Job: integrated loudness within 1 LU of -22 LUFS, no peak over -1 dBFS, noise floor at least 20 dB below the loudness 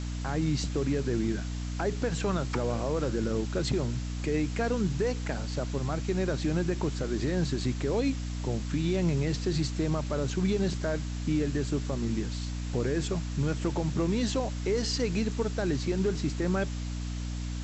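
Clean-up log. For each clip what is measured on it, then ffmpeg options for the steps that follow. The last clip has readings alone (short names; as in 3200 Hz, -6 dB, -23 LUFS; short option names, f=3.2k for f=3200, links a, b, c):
hum 60 Hz; harmonics up to 300 Hz; hum level -32 dBFS; noise floor -34 dBFS; noise floor target -51 dBFS; loudness -30.5 LUFS; peak -17.5 dBFS; loudness target -22.0 LUFS
-> -af "bandreject=f=60:t=h:w=6,bandreject=f=120:t=h:w=6,bandreject=f=180:t=h:w=6,bandreject=f=240:t=h:w=6,bandreject=f=300:t=h:w=6"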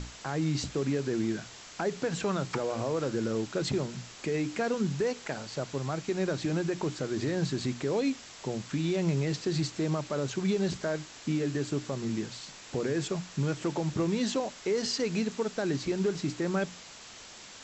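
hum none; noise floor -49 dBFS; noise floor target -52 dBFS
-> -af "afftdn=nr=6:nf=-49"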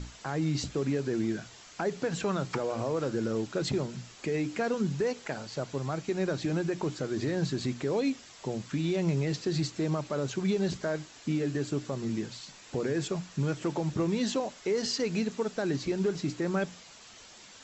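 noise floor -52 dBFS; loudness -31.5 LUFS; peak -18.0 dBFS; loudness target -22.0 LUFS
-> -af "volume=9.5dB"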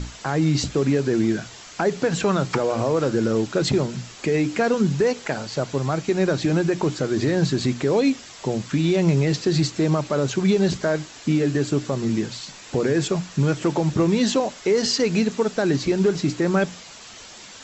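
loudness -22.0 LUFS; peak -8.5 dBFS; noise floor -42 dBFS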